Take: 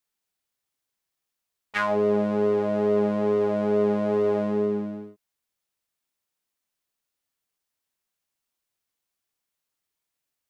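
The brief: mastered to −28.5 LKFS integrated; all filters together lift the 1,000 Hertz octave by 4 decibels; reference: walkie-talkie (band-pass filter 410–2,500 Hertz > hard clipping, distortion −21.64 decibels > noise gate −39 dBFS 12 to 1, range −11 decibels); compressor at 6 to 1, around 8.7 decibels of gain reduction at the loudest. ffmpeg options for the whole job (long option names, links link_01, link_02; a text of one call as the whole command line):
ffmpeg -i in.wav -af "equalizer=frequency=1000:width_type=o:gain=5,acompressor=threshold=-27dB:ratio=6,highpass=410,lowpass=2500,asoftclip=type=hard:threshold=-25.5dB,agate=range=-11dB:threshold=-39dB:ratio=12,volume=6dB" out.wav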